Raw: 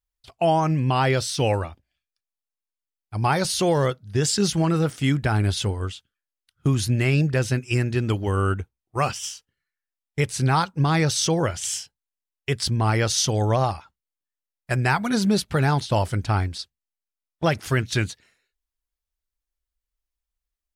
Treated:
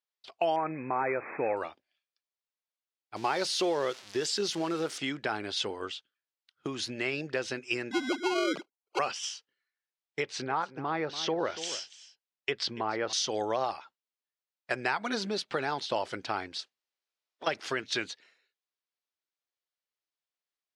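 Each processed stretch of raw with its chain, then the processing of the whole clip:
0.56–1.57 s: CVSD coder 32 kbps + brick-wall FIR low-pass 2.6 kHz
3.16–4.98 s: zero-crossing glitches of -23 dBFS + peaking EQ 360 Hz +4 dB 0.39 oct
7.91–8.99 s: formants replaced by sine waves + sample-rate reducer 1.8 kHz
10.21–13.13 s: low-pass that closes with the level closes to 1.7 kHz, closed at -16.5 dBFS + delay 287 ms -17 dB
16.59–17.46 s: spectral peaks clipped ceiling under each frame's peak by 18 dB + compression 5:1, threshold -38 dBFS
whole clip: bass shelf 440 Hz -4 dB; compression, threshold -24 dBFS; Chebyshev band-pass 360–4600 Hz, order 2

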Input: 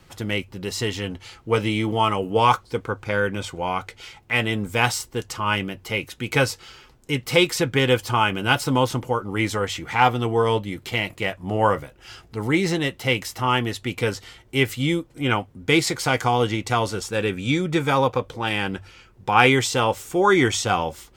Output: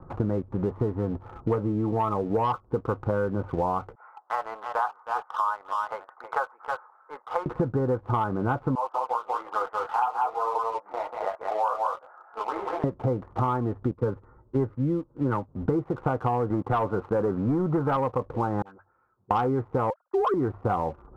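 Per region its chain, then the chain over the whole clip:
3.95–7.46 s: high-pass 810 Hz 24 dB/octave + delay 317 ms -9.5 dB
8.75–12.84 s: high-pass 670 Hz 24 dB/octave + delay 188 ms -3 dB + detune thickener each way 20 cents
13.91–15.49 s: Butterworth band-stop 720 Hz, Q 5.2 + three bands expanded up and down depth 70%
16.50–17.97 s: high-pass 98 Hz + waveshaping leveller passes 2 + tilt shelf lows -3.5 dB, about 1.1 kHz
18.62–19.31 s: high-pass 63 Hz + pre-emphasis filter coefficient 0.97 + phase dispersion highs, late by 59 ms, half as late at 800 Hz
19.90–20.34 s: formants replaced by sine waves + expander -51 dBFS
whole clip: steep low-pass 1.3 kHz 48 dB/octave; waveshaping leveller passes 1; compression 8:1, threshold -32 dBFS; trim +8.5 dB

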